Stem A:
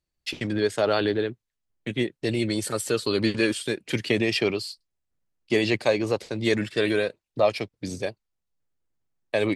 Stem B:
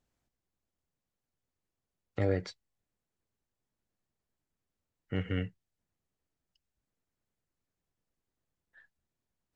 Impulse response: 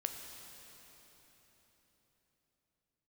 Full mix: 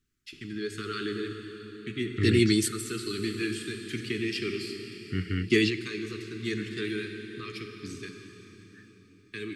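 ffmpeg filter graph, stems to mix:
-filter_complex "[0:a]dynaudnorm=framelen=190:gausssize=5:maxgain=11.5dB,volume=-9dB,asplit=2[link_01][link_02];[link_02]volume=-6dB[link_03];[1:a]volume=3dB,asplit=2[link_04][link_05];[link_05]apad=whole_len=421252[link_06];[link_01][link_06]sidechaingate=range=-33dB:threshold=-60dB:ratio=16:detection=peak[link_07];[2:a]atrim=start_sample=2205[link_08];[link_03][link_08]afir=irnorm=-1:irlink=0[link_09];[link_07][link_04][link_09]amix=inputs=3:normalize=0,asuperstop=centerf=700:order=12:qfactor=0.92"

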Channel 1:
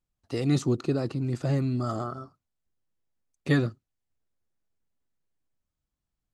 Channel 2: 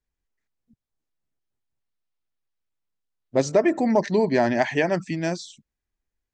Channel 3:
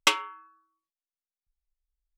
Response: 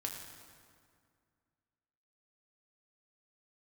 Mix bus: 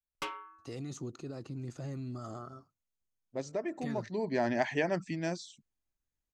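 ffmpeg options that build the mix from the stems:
-filter_complex "[0:a]acompressor=threshold=-30dB:ratio=1.5,alimiter=limit=-23dB:level=0:latency=1:release=78,equalizer=frequency=6500:width=6:gain=10.5,adelay=350,volume=-9.5dB[link_01];[1:a]volume=-8.5dB,afade=type=in:start_time=4.09:duration=0.43:silence=0.398107[link_02];[2:a]lowpass=frequency=1100:poles=1,asoftclip=type=tanh:threshold=-27.5dB,adelay=150,volume=-4dB[link_03];[link_01][link_02][link_03]amix=inputs=3:normalize=0"

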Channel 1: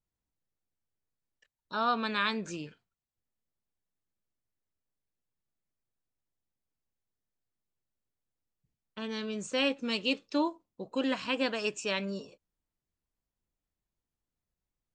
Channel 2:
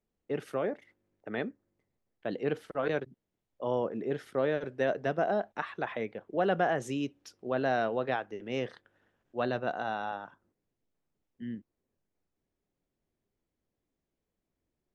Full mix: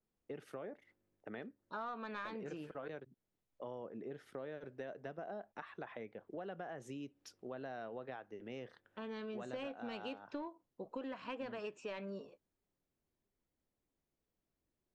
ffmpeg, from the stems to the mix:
ffmpeg -i stem1.wav -i stem2.wav -filter_complex "[0:a]highshelf=frequency=2800:gain=-8.5,asplit=2[link_01][link_02];[link_02]highpass=frequency=720:poles=1,volume=11dB,asoftclip=type=tanh:threshold=-18dB[link_03];[link_01][link_03]amix=inputs=2:normalize=0,lowpass=frequency=1100:poles=1,volume=-6dB,volume=-5dB[link_04];[1:a]acompressor=threshold=-41dB:ratio=2.5,adynamicequalizer=threshold=0.00158:dfrequency=2200:dqfactor=0.7:tfrequency=2200:tqfactor=0.7:attack=5:release=100:ratio=0.375:range=2:mode=cutabove:tftype=highshelf,volume=-4.5dB[link_05];[link_04][link_05]amix=inputs=2:normalize=0,acompressor=threshold=-40dB:ratio=10" out.wav

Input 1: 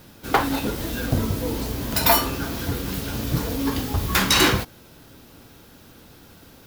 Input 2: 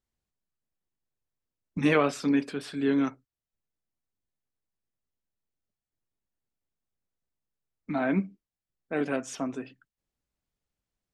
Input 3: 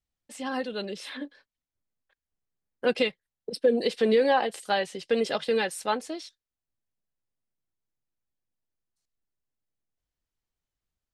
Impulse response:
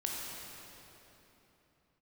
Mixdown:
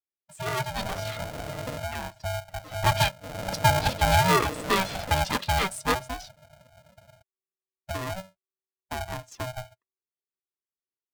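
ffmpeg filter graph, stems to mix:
-filter_complex "[0:a]asoftclip=type=tanh:threshold=-16.5dB,adelay=550,volume=-10dB[link_01];[1:a]highpass=430,acontrast=52,volume=-6dB,asplit=2[link_02][link_03];[2:a]bandreject=frequency=50:width_type=h:width=6,bandreject=frequency=100:width_type=h:width=6,bandreject=frequency=150:width_type=h:width=6,bandreject=frequency=200:width_type=h:width=6,bandreject=frequency=250:width_type=h:width=6,bandreject=frequency=300:width_type=h:width=6,bandreject=frequency=350:width_type=h:width=6,volume=2.5dB[link_04];[link_03]apad=whole_len=318298[link_05];[link_01][link_05]sidechaincompress=threshold=-52dB:ratio=8:attack=48:release=241[link_06];[link_06][link_02]amix=inputs=2:normalize=0,equalizer=frequency=260:width=0.98:gain=13.5,acompressor=threshold=-30dB:ratio=5,volume=0dB[link_07];[link_04][link_07]amix=inputs=2:normalize=0,afftdn=noise_reduction=25:noise_floor=-38,adynamicequalizer=threshold=0.0158:dfrequency=350:dqfactor=0.98:tfrequency=350:tqfactor=0.98:attack=5:release=100:ratio=0.375:range=1.5:mode=cutabove:tftype=bell,aeval=exprs='val(0)*sgn(sin(2*PI*380*n/s))':channel_layout=same"

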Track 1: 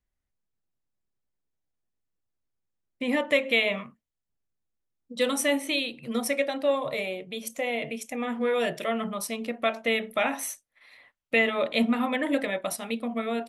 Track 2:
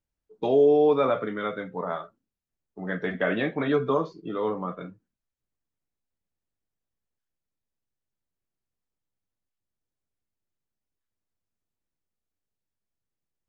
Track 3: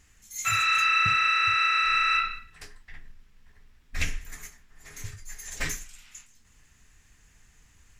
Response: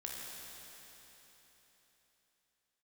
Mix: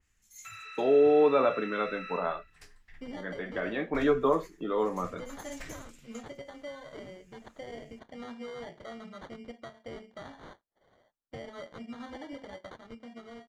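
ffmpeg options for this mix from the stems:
-filter_complex "[0:a]acrusher=samples=17:mix=1:aa=0.000001,lowpass=3800,alimiter=limit=-21.5dB:level=0:latency=1:release=368,volume=-16.5dB,asplit=2[link_01][link_02];[1:a]agate=range=-11dB:threshold=-39dB:ratio=16:detection=peak,highpass=200,adelay=350,volume=-5dB[link_03];[2:a]acompressor=threshold=-31dB:ratio=5,volume=-13.5dB[link_04];[link_02]apad=whole_len=609968[link_05];[link_03][link_05]sidechaincompress=threshold=-50dB:ratio=8:attack=16:release=535[link_06];[link_01][link_06][link_04]amix=inputs=3:normalize=0,dynaudnorm=framelen=160:gausssize=13:maxgain=4.5dB,adynamicequalizer=threshold=0.00355:dfrequency=3700:dqfactor=0.7:tfrequency=3700:tqfactor=0.7:attack=5:release=100:ratio=0.375:range=3.5:mode=cutabove:tftype=highshelf"

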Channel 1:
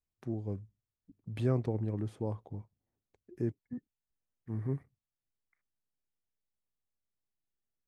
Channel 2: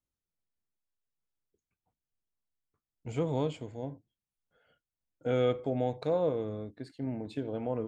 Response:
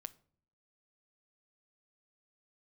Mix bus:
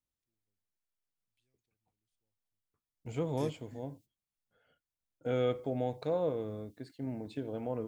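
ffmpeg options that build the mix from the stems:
-filter_complex "[0:a]aexciter=amount=13.7:drive=7.3:freq=2100,volume=-10.5dB[link_01];[1:a]volume=-3dB,asplit=2[link_02][link_03];[link_03]apad=whole_len=347459[link_04];[link_01][link_04]sidechaingate=range=-46dB:threshold=-57dB:ratio=16:detection=peak[link_05];[link_05][link_02]amix=inputs=2:normalize=0"

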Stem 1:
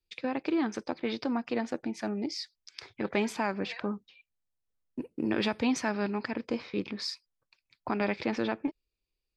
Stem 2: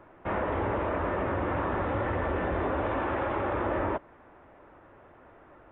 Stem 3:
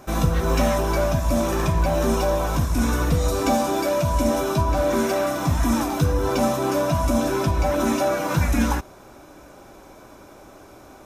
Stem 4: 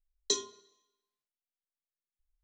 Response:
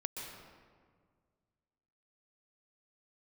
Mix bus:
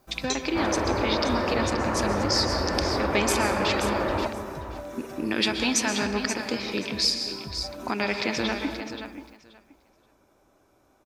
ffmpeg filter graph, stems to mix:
-filter_complex "[0:a]crystalizer=i=6.5:c=0,volume=-0.5dB,asplit=3[link_01][link_02][link_03];[link_02]volume=-3dB[link_04];[link_03]volume=-9.5dB[link_05];[1:a]adelay=300,volume=-0.5dB,asplit=3[link_06][link_07][link_08];[link_07]volume=-7dB[link_09];[link_08]volume=-11dB[link_10];[2:a]volume=-18dB,asplit=2[link_11][link_12];[link_12]volume=-14.5dB[link_13];[3:a]volume=-1dB[link_14];[link_01][link_11]amix=inputs=2:normalize=0,acompressor=threshold=-32dB:ratio=2.5,volume=0dB[link_15];[4:a]atrim=start_sample=2205[link_16];[link_04][link_09]amix=inputs=2:normalize=0[link_17];[link_17][link_16]afir=irnorm=-1:irlink=0[link_18];[link_05][link_10][link_13]amix=inputs=3:normalize=0,aecho=0:1:529|1058|1587:1|0.17|0.0289[link_19];[link_06][link_14][link_15][link_18][link_19]amix=inputs=5:normalize=0"

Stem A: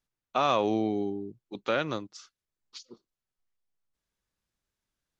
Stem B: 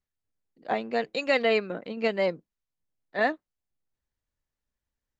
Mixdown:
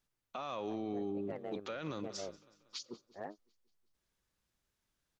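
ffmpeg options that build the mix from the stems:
ffmpeg -i stem1.wav -i stem2.wav -filter_complex "[0:a]acompressor=threshold=-31dB:ratio=6,volume=2dB,asplit=2[link_01][link_02];[link_02]volume=-22dB[link_03];[1:a]lowpass=1000,asoftclip=type=hard:threshold=-17.5dB,tremolo=f=100:d=0.974,volume=-14dB[link_04];[link_03]aecho=0:1:185|370|555|740|925|1110|1295|1480:1|0.52|0.27|0.141|0.0731|0.038|0.0198|0.0103[link_05];[link_01][link_04][link_05]amix=inputs=3:normalize=0,alimiter=level_in=7.5dB:limit=-24dB:level=0:latency=1:release=10,volume=-7.5dB" out.wav

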